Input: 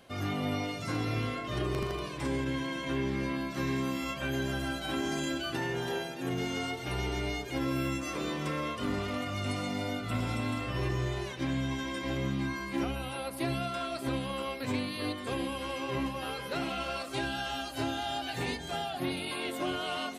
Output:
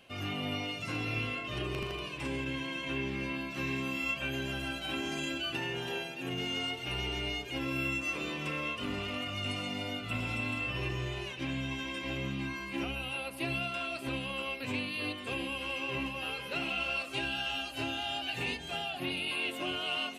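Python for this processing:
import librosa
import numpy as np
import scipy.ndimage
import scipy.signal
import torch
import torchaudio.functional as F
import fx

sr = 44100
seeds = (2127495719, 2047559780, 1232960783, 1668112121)

y = fx.peak_eq(x, sr, hz=2700.0, db=14.0, octaves=0.39)
y = y * 10.0 ** (-4.5 / 20.0)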